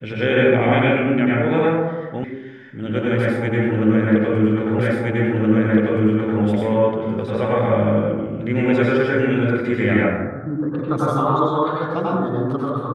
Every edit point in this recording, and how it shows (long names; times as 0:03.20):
0:02.24: cut off before it has died away
0:04.79: the same again, the last 1.62 s